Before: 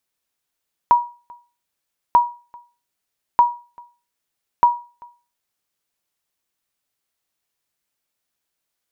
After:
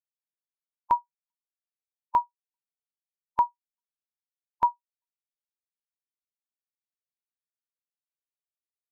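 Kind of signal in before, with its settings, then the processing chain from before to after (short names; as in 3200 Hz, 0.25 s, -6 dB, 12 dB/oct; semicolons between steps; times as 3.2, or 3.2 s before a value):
sonar ping 960 Hz, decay 0.34 s, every 1.24 s, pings 4, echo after 0.39 s, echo -28 dB -5 dBFS
per-bin expansion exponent 3; notch 430 Hz, Q 12; limiter -14 dBFS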